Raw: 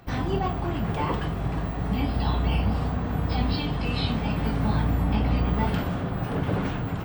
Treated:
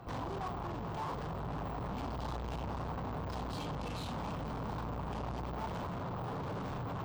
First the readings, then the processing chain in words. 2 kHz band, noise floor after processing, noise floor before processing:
−13.0 dB, −40 dBFS, −31 dBFS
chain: tube saturation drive 40 dB, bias 0.5
graphic EQ with 10 bands 125 Hz +4 dB, 500 Hz +3 dB, 1,000 Hz +9 dB, 2,000 Hz −5 dB, 16,000 Hz −8 dB
speech leveller
level −1 dB

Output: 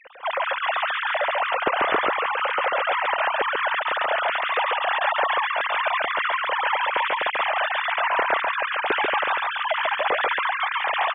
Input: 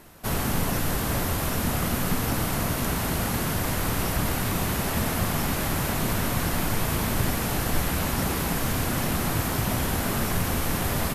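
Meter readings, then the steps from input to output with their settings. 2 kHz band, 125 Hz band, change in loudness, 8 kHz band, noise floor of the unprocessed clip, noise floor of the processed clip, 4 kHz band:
+9.5 dB, below −30 dB, +3.5 dB, below −40 dB, −28 dBFS, −30 dBFS, +4.0 dB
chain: three sine waves on the formant tracks
single-tap delay 140 ms −3 dB

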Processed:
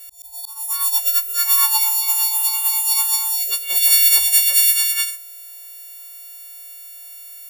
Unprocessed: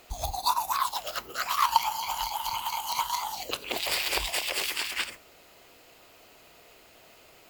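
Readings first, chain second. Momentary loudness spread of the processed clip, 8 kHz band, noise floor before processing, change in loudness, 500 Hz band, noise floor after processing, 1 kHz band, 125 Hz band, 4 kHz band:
13 LU, +18.0 dB, −56 dBFS, +15.0 dB, can't be measured, −38 dBFS, −5.5 dB, below −15 dB, +8.5 dB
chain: every partial snapped to a pitch grid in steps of 4 semitones
volume swells 549 ms
first-order pre-emphasis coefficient 0.8
level +4.5 dB

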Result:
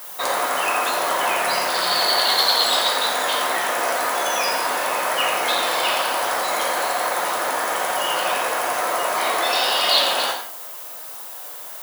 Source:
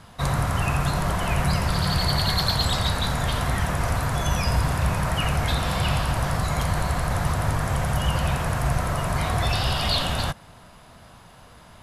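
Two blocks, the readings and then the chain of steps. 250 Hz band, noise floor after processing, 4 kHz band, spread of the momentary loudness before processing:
−8.5 dB, −35 dBFS, +7.5 dB, 3 LU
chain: high-pass filter 380 Hz 24 dB per octave
background noise violet −43 dBFS
reverb whose tail is shaped and stops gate 220 ms falling, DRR 0.5 dB
level +4.5 dB

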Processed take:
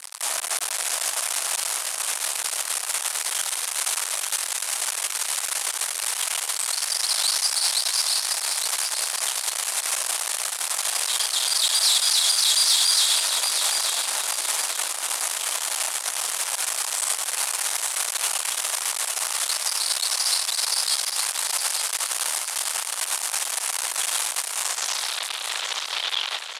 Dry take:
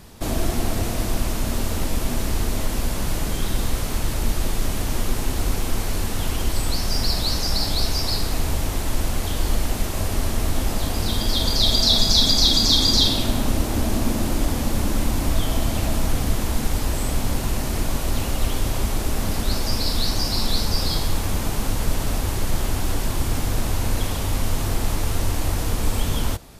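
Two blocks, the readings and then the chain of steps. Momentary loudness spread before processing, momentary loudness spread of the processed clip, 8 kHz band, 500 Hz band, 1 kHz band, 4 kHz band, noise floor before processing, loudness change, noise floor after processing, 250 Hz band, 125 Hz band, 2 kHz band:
9 LU, 7 LU, +9.0 dB, −11.0 dB, −1.0 dB, 0.0 dB, −26 dBFS, +1.0 dB, −32 dBFS, below −30 dB, below −40 dB, +3.5 dB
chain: fuzz pedal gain 40 dB, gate −39 dBFS
brickwall limiter −12.5 dBFS, peak gain reduction 5 dB
Bessel high-pass filter 1,100 Hz, order 4
low-pass filter sweep 9,600 Hz → 3,700 Hz, 0:24.60–0:25.22
repeating echo 866 ms, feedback 32%, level −6.5 dB
level −4 dB

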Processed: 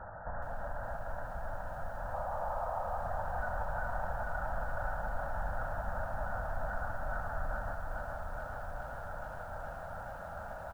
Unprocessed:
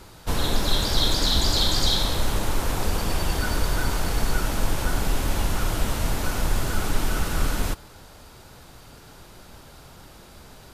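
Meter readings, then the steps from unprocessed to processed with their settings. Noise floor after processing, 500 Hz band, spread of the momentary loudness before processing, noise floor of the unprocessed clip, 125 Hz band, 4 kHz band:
−44 dBFS, −7.0 dB, 6 LU, −47 dBFS, −15.0 dB, below −40 dB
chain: loose part that buzzes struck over −31 dBFS, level −25 dBFS
gain on a spectral selection 0:02.14–0:02.98, 470–1,300 Hz +12 dB
low shelf with overshoot 480 Hz −7 dB, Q 3
comb filter 1.4 ms, depth 44%
dynamic equaliser 380 Hz, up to −8 dB, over −38 dBFS, Q 1.3
downward compressor 16 to 1, threshold −33 dBFS, peak gain reduction 19.5 dB
brickwall limiter −29.5 dBFS, peak gain reduction 6.5 dB
linear-phase brick-wall low-pass 1,900 Hz
tuned comb filter 97 Hz, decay 1.4 s, harmonics all, mix 60%
feedback echo at a low word length 421 ms, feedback 80%, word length 12 bits, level −5 dB
level +9 dB

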